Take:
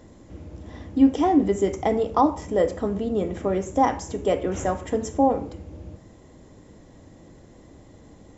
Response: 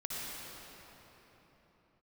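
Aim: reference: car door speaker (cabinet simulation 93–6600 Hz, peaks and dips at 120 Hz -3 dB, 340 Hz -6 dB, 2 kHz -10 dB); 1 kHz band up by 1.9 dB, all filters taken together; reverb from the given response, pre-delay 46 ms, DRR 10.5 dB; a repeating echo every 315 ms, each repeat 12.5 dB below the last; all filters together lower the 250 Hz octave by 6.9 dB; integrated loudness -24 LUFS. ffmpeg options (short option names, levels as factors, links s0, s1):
-filter_complex "[0:a]equalizer=f=250:t=o:g=-6,equalizer=f=1000:t=o:g=3.5,aecho=1:1:315|630|945:0.237|0.0569|0.0137,asplit=2[s0][s1];[1:a]atrim=start_sample=2205,adelay=46[s2];[s1][s2]afir=irnorm=-1:irlink=0,volume=0.211[s3];[s0][s3]amix=inputs=2:normalize=0,highpass=93,equalizer=f=120:t=q:w=4:g=-3,equalizer=f=340:t=q:w=4:g=-6,equalizer=f=2000:t=q:w=4:g=-10,lowpass=f=6600:w=0.5412,lowpass=f=6600:w=1.3066,volume=1.06"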